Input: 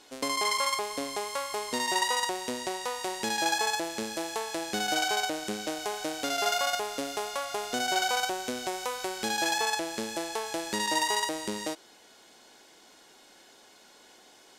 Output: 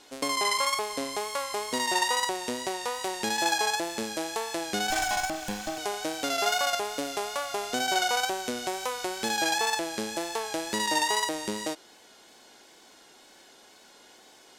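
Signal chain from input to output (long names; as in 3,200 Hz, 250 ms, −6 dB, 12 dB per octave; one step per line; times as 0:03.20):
0:04.90–0:05.78: lower of the sound and its delayed copy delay 1.2 ms
tape wow and flutter 36 cents
level +1.5 dB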